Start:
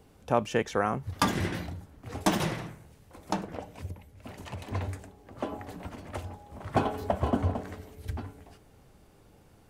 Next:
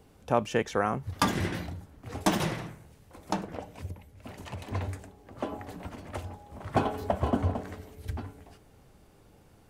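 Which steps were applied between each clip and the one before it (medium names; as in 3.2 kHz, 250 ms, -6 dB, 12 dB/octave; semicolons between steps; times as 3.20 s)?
no audible change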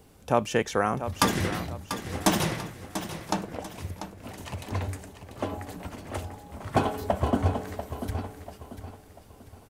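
treble shelf 4.9 kHz +6.5 dB; on a send: feedback delay 691 ms, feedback 37%, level -10.5 dB; on the sum: trim +2 dB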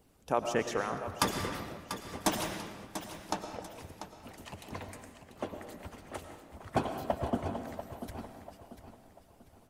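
harmonic-percussive split harmonic -15 dB; on a send at -7 dB: reverberation RT60 1.3 s, pre-delay 70 ms; on the sum: trim -5 dB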